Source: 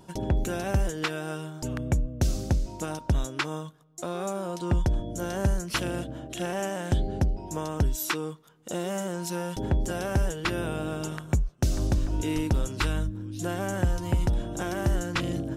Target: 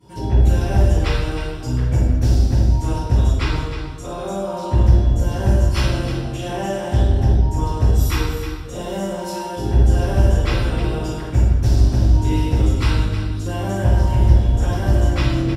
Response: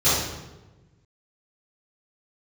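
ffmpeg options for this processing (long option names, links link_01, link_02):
-filter_complex "[0:a]aecho=1:1:312:0.316[link_01];[1:a]atrim=start_sample=2205,asetrate=35280,aresample=44100[link_02];[link_01][link_02]afir=irnorm=-1:irlink=0,volume=-15.5dB"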